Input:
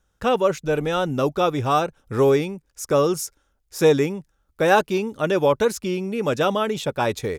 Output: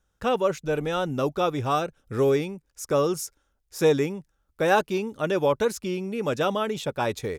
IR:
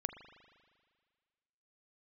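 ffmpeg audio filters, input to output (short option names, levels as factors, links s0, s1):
-filter_complex "[0:a]asettb=1/sr,asplit=3[s0][s1][s2];[s0]atrim=end=1.754[s3];[s1]atrim=start=1.75:end=2.36,asetpts=PTS-STARTPTS,afade=t=in:d=0.004:c=qsin,afade=t=out:st=0.606:d=0.004:c=qsin,equalizer=f=930:w=2.9:g=-6.5[s4];[s2]atrim=start=2.356[s5];[s3][s4]acrossfade=d=0.004:c1=hsin:c2=qsin[s6];[s6][s5]acrossfade=d=0.004:c1=qsin:c2=hsin,volume=0.631"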